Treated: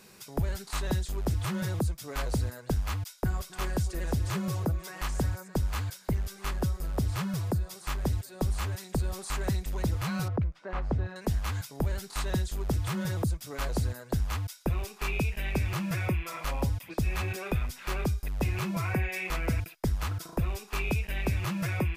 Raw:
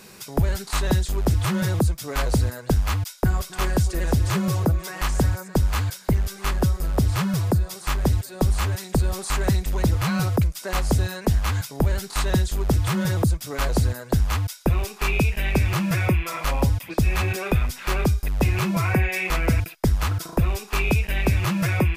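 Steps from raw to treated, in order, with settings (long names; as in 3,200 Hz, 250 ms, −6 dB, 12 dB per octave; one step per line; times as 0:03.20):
0:10.28–0:11.16: low-pass filter 1,800 Hz 12 dB per octave
level −8.5 dB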